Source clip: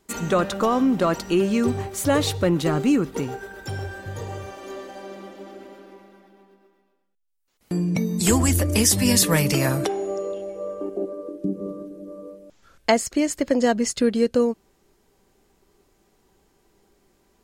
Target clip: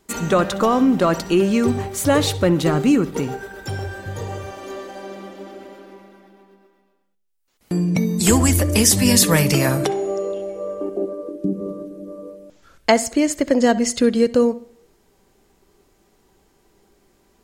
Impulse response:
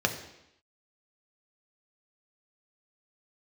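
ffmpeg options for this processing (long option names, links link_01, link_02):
-filter_complex "[0:a]asplit=2[link_01][link_02];[1:a]atrim=start_sample=2205,asetrate=57330,aresample=44100,adelay=64[link_03];[link_02][link_03]afir=irnorm=-1:irlink=0,volume=-25.5dB[link_04];[link_01][link_04]amix=inputs=2:normalize=0,volume=3.5dB"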